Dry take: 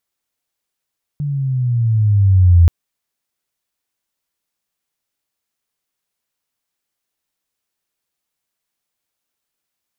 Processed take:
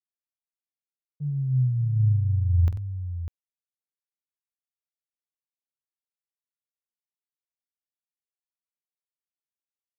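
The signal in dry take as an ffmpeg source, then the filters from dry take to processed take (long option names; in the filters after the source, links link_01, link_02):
-f lavfi -i "aevalsrc='pow(10,(-4.5+13.5*(t/1.48-1))/20)*sin(2*PI*148*1.48/(-10*log(2)/12)*(exp(-10*log(2)/12*t/1.48)-1))':duration=1.48:sample_rate=44100"
-filter_complex "[0:a]agate=range=-33dB:threshold=-15dB:ratio=3:detection=peak,acompressor=threshold=-22dB:ratio=6,asplit=2[link_01][link_02];[link_02]aecho=0:1:47|93|600:0.282|0.211|0.335[link_03];[link_01][link_03]amix=inputs=2:normalize=0"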